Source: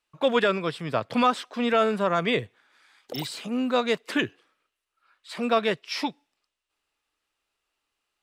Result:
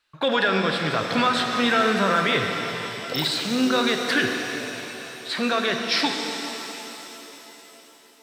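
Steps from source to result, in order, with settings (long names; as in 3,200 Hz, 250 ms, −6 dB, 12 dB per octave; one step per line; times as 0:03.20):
graphic EQ with 15 bands 100 Hz +3 dB, 1,600 Hz +10 dB, 4,000 Hz +9 dB
brickwall limiter −15 dBFS, peak gain reduction 9.5 dB
reverb with rising layers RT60 3.8 s, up +7 semitones, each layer −8 dB, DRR 3 dB
level +3 dB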